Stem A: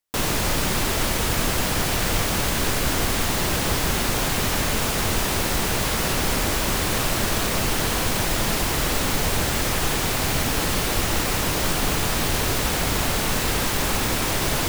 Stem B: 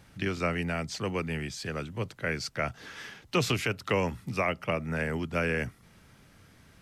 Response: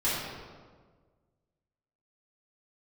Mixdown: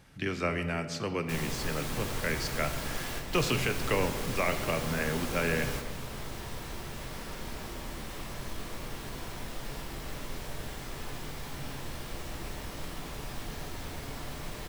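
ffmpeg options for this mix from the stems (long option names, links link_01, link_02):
-filter_complex "[0:a]adelay=1150,volume=-17.5dB,asplit=2[link_01][link_02];[link_02]volume=-11.5dB[link_03];[1:a]volume=-2.5dB,asplit=3[link_04][link_05][link_06];[link_05]volume=-17dB[link_07];[link_06]apad=whole_len=698495[link_08];[link_01][link_08]sidechaingate=range=-33dB:threshold=-50dB:ratio=16:detection=peak[link_09];[2:a]atrim=start_sample=2205[link_10];[link_03][link_07]amix=inputs=2:normalize=0[link_11];[link_11][link_10]afir=irnorm=-1:irlink=0[link_12];[link_09][link_04][link_12]amix=inputs=3:normalize=0"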